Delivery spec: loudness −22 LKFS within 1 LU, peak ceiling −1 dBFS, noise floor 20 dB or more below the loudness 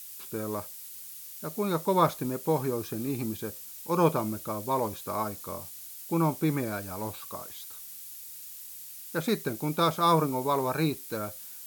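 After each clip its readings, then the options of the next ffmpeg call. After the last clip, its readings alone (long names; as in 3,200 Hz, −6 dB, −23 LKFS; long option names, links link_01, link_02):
background noise floor −44 dBFS; target noise floor −51 dBFS; integrated loudness −30.5 LKFS; sample peak −10.5 dBFS; target loudness −22.0 LKFS
→ -af "afftdn=noise_reduction=7:noise_floor=-44"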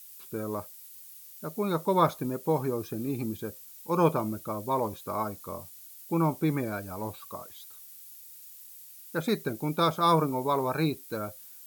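background noise floor −49 dBFS; target noise floor −50 dBFS
→ -af "afftdn=noise_reduction=6:noise_floor=-49"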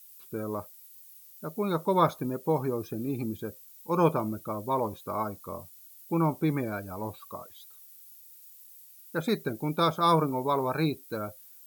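background noise floor −52 dBFS; integrated loudness −29.5 LKFS; sample peak −10.5 dBFS; target loudness −22.0 LKFS
→ -af "volume=7.5dB"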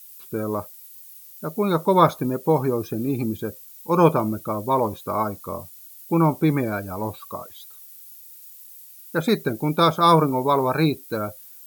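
integrated loudness −22.0 LKFS; sample peak −3.0 dBFS; background noise floor −45 dBFS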